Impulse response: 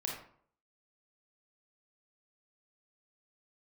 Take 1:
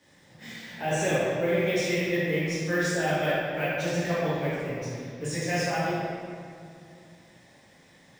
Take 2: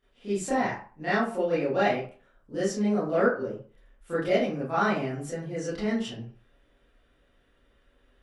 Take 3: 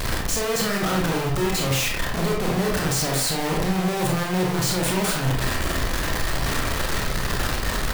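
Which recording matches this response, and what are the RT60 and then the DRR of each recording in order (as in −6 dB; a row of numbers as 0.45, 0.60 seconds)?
3; 2.5, 0.40, 0.60 seconds; −11.0, −13.0, −1.5 decibels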